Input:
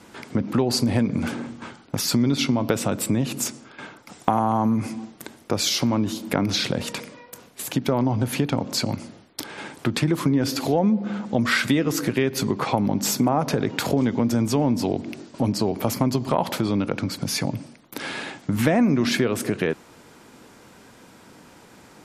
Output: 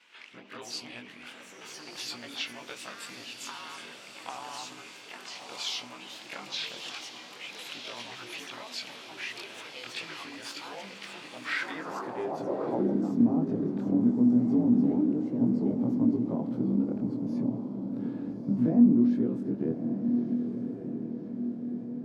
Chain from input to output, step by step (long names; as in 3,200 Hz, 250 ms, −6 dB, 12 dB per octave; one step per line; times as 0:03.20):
every overlapping window played backwards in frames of 50 ms
dynamic equaliser 2,200 Hz, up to −6 dB, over −47 dBFS, Q 1.3
on a send: feedback delay with all-pass diffusion 1,230 ms, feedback 57%, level −7 dB
on the sum: delay with pitch and tempo change per echo 89 ms, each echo +4 semitones, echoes 3, each echo −6 dB
band-pass filter sweep 2,700 Hz → 240 Hz, 0:11.38–0:13.15
level +2 dB